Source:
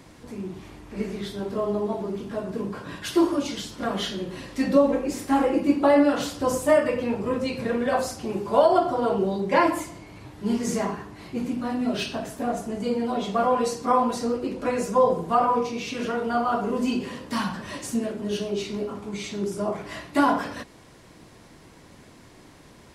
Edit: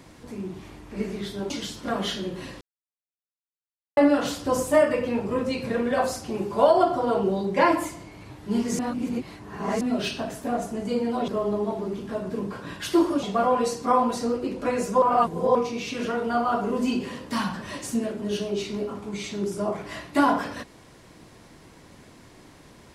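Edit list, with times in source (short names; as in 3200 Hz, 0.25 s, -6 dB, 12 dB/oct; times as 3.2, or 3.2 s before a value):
1.5–3.45 move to 13.23
4.56–5.92 mute
10.74–11.76 reverse
15.02–15.55 reverse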